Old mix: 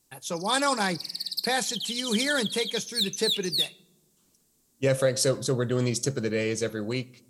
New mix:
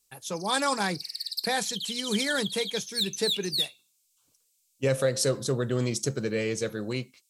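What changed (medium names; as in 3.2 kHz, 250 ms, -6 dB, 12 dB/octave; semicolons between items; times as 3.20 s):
background: add brick-wall FIR high-pass 2.1 kHz; reverb: off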